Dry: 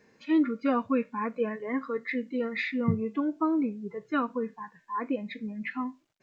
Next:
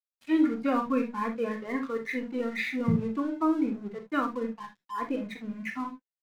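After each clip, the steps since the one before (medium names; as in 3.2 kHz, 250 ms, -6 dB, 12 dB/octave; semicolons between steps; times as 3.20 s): hum notches 60/120/180/240/300/360/420/480 Hz; crossover distortion -48.5 dBFS; on a send at -5 dB: reverberation, pre-delay 16 ms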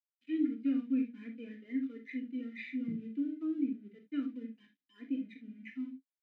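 vowel filter i; comb of notches 1.1 kHz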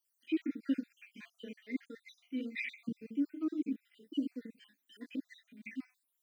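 random holes in the spectrogram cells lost 59%; tone controls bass -10 dB, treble +13 dB; trim +6 dB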